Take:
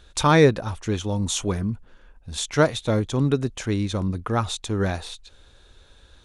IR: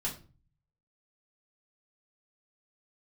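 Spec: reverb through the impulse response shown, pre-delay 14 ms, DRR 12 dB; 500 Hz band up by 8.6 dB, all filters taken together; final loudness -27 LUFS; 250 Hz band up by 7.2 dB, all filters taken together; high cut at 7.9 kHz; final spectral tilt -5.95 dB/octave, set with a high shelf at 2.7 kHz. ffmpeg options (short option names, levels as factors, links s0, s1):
-filter_complex "[0:a]lowpass=7900,equalizer=f=250:t=o:g=7,equalizer=f=500:t=o:g=8,highshelf=f=2700:g=4.5,asplit=2[s0][s1];[1:a]atrim=start_sample=2205,adelay=14[s2];[s1][s2]afir=irnorm=-1:irlink=0,volume=0.178[s3];[s0][s3]amix=inputs=2:normalize=0,volume=0.299"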